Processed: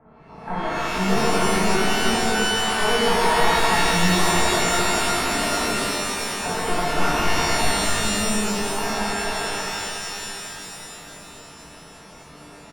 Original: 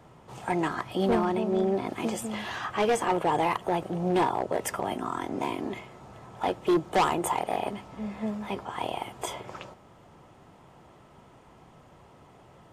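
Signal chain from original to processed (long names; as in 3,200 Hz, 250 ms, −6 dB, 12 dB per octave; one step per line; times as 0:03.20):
wavefolder on the positive side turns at −26.5 dBFS
low-pass filter 1,700 Hz 24 dB per octave
comb filter 4.5 ms, depth 63%
reverb with rising layers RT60 3.2 s, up +12 semitones, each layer −2 dB, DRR −8.5 dB
level −3 dB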